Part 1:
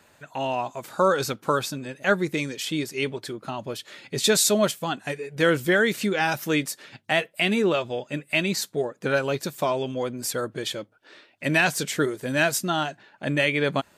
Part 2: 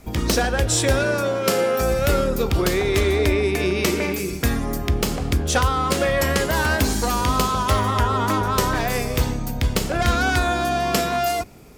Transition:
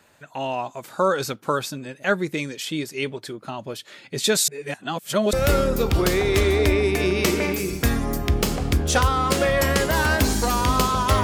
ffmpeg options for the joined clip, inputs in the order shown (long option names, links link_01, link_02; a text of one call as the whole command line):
ffmpeg -i cue0.wav -i cue1.wav -filter_complex "[0:a]apad=whole_dur=11.23,atrim=end=11.23,asplit=2[link_01][link_02];[link_01]atrim=end=4.482[link_03];[link_02]atrim=start=4.478:end=5.332,asetpts=PTS-STARTPTS,areverse[link_04];[1:a]atrim=start=1.928:end=7.83[link_05];[link_03][link_04]acrossfade=duration=0.004:curve1=hsin:curve2=hsin[link_06];[link_06][link_05]acrossfade=duration=0.004:curve1=hsin:curve2=hsin" out.wav